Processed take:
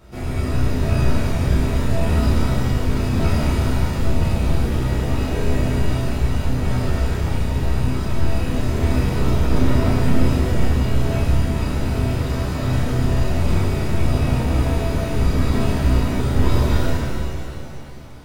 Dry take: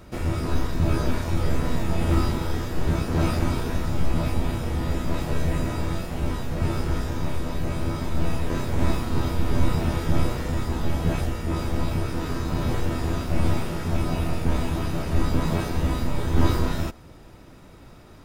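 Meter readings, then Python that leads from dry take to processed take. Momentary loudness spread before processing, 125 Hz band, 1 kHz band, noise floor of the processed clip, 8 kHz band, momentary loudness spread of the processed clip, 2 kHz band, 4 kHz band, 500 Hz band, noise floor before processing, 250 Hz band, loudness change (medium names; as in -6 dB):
5 LU, +6.5 dB, +3.0 dB, -27 dBFS, +4.0 dB, 4 LU, +4.5 dB, +4.5 dB, +5.0 dB, -46 dBFS, +5.0 dB, +5.5 dB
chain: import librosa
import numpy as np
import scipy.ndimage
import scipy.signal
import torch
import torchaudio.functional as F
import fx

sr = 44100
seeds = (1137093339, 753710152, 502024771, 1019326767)

y = fx.chorus_voices(x, sr, voices=6, hz=0.87, base_ms=15, depth_ms=1.5, mix_pct=45)
y = fx.room_flutter(y, sr, wall_m=5.4, rt60_s=0.32)
y = fx.rev_shimmer(y, sr, seeds[0], rt60_s=2.5, semitones=7, shimmer_db=-8, drr_db=-3.5)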